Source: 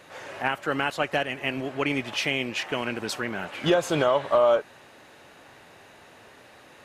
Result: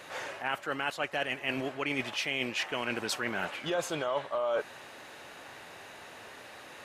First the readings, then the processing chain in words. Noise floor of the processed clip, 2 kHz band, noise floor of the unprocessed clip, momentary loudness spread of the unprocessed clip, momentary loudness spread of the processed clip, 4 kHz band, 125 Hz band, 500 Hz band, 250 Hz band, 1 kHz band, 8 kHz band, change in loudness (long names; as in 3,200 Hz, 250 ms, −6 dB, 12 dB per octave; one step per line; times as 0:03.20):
−49 dBFS, −4.0 dB, −52 dBFS, 9 LU, 16 LU, −4.0 dB, −10.0 dB, −9.0 dB, −8.0 dB, −7.0 dB, −2.5 dB, −7.0 dB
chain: low-shelf EQ 430 Hz −6.5 dB
reversed playback
downward compressor 6 to 1, threshold −33 dBFS, peak gain reduction 14.5 dB
reversed playback
level +4 dB